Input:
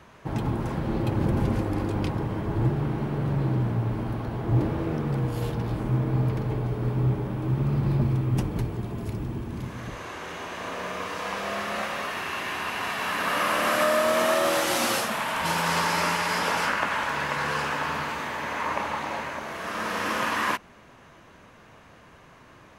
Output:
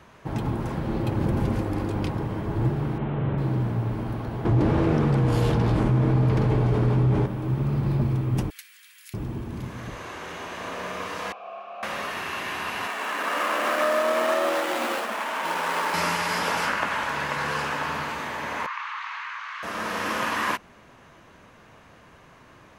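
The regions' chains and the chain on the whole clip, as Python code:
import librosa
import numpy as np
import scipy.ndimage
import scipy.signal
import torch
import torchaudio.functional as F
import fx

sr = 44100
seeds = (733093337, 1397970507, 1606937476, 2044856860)

y = fx.chain(x, sr, fx.steep_lowpass(hz=3600.0, slope=48),
    fx.doubler(ms=40.0, db=-6.0), at=(2.98, 3.38))
y = fx.chain(y, sr, fx.lowpass(hz=8800.0, slope=12),
    fx.env_flatten(amount_pct=70), at=(4.45, 7.26))
y = fx.chain(y, sr, fx.steep_highpass(hz=1700.0, slope=36),
    fx.high_shelf(hz=6100.0, db=8.0), at=(8.5, 9.14))
y = fx.chain(y, sr, fx.vowel_filter(vowel='a'),
    fx.air_absorb(metres=77.0), at=(11.32, 11.83))
y = fx.chain(y, sr, fx.median_filter(points=9),
    fx.highpass(hz=250.0, slope=24), at=(12.87, 15.94))
y = fx.chain(y, sr, fx.ellip_highpass(hz=1100.0, order=4, stop_db=80),
    fx.air_absorb(metres=170.0),
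    fx.env_flatten(amount_pct=50), at=(18.66, 19.63))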